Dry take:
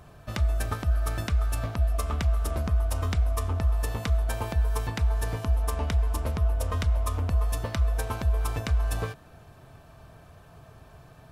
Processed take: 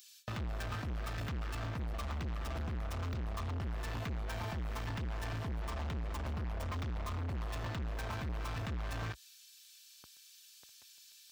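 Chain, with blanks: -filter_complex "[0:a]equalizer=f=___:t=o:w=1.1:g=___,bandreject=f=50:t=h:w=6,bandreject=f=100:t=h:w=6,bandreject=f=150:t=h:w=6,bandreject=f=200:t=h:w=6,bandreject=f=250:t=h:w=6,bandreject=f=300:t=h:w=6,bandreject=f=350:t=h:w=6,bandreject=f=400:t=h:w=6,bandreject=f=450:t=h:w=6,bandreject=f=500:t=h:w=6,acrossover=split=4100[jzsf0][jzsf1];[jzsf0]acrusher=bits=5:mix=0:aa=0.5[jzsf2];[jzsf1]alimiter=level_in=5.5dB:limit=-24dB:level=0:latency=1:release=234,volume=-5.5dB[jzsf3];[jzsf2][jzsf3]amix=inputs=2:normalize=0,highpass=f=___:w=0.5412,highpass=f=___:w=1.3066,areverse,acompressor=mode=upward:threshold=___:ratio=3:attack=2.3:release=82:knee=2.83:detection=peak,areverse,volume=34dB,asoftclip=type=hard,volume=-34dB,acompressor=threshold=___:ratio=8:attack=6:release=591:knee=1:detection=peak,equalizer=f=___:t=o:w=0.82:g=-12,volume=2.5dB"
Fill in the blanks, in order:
450, -8.5, 56, 56, -44dB, -39dB, 11000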